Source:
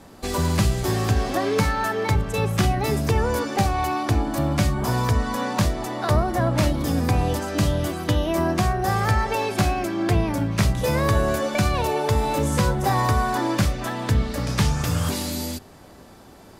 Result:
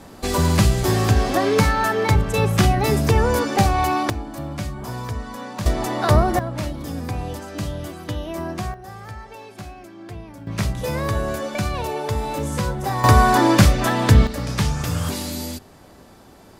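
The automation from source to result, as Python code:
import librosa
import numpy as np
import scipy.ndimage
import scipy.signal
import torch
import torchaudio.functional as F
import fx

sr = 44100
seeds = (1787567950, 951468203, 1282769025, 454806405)

y = fx.gain(x, sr, db=fx.steps((0.0, 4.0), (4.1, -7.5), (5.66, 4.5), (6.39, -6.5), (8.74, -15.5), (10.47, -3.0), (13.04, 8.0), (14.27, -0.5)))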